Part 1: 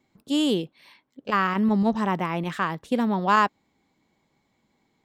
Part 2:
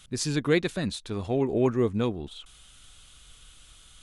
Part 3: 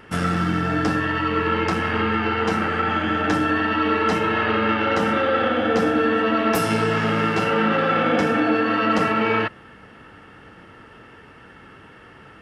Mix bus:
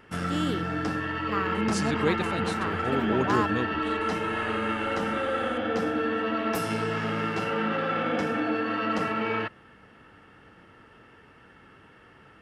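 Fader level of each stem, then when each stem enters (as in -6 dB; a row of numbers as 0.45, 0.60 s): -8.5, -4.0, -8.0 dB; 0.00, 1.55, 0.00 s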